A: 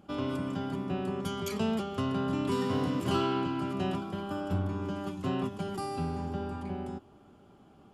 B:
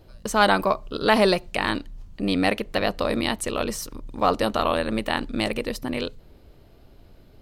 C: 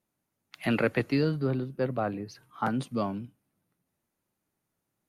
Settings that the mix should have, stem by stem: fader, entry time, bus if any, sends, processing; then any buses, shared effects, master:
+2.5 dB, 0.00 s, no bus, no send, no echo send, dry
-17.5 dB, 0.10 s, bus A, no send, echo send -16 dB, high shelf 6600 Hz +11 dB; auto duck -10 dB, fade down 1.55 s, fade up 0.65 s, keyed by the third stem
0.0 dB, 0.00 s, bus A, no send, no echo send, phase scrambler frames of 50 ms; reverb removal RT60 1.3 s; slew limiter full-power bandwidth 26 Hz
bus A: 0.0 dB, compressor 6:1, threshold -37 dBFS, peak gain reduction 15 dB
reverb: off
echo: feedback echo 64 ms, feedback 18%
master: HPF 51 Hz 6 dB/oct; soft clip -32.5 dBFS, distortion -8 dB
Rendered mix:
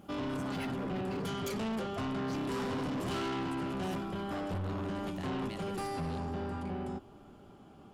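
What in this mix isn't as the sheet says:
stem B: missing high shelf 6600 Hz +11 dB; stem C 0.0 dB -> +11.5 dB; master: missing HPF 51 Hz 6 dB/oct

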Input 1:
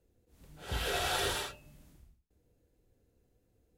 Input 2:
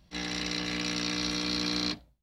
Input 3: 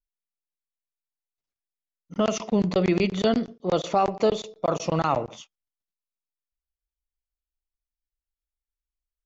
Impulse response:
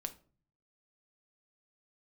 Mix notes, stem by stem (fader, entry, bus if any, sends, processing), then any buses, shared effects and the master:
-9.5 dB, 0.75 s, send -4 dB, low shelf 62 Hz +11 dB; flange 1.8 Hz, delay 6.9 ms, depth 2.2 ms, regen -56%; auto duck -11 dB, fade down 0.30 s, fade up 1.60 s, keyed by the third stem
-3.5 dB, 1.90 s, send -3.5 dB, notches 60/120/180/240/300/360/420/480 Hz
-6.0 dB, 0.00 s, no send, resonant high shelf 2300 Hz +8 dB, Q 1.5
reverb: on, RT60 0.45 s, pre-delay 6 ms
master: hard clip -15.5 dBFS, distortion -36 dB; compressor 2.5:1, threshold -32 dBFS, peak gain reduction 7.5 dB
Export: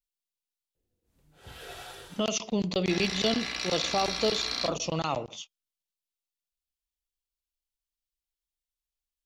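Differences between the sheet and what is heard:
stem 1: missing low shelf 62 Hz +11 dB; stem 2: entry 1.90 s -> 2.75 s; master: missing compressor 2.5:1, threshold -32 dBFS, peak gain reduction 7.5 dB

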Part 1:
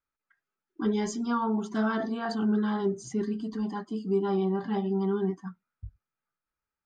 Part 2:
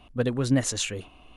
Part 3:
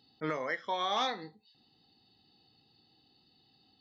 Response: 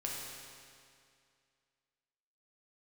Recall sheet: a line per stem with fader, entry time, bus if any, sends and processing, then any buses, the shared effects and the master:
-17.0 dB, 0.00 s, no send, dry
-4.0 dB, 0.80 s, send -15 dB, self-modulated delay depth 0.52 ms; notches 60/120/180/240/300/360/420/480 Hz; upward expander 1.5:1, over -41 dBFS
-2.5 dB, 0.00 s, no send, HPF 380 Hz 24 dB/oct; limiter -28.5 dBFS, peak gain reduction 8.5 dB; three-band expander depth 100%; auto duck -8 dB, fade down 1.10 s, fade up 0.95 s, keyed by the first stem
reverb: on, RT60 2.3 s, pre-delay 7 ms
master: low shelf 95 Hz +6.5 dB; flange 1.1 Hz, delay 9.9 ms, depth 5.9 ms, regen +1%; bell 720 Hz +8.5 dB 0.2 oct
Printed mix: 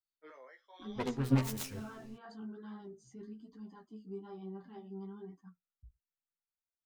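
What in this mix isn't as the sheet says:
stem 3 -2.5 dB -> -14.0 dB; master: missing bell 720 Hz +8.5 dB 0.2 oct

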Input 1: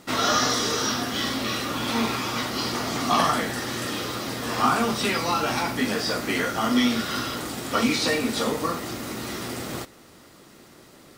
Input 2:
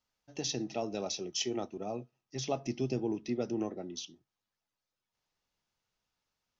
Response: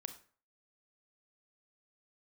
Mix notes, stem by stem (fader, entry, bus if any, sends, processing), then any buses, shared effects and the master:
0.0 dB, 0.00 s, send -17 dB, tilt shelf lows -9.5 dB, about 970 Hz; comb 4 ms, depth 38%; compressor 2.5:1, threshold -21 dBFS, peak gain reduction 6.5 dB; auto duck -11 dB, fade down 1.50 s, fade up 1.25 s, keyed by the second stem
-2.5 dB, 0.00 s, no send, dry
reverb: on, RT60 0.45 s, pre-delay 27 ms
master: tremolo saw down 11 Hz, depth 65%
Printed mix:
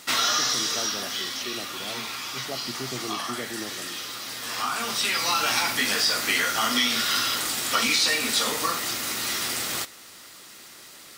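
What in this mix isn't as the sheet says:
stem 1: missing comb 4 ms, depth 38%; master: missing tremolo saw down 11 Hz, depth 65%

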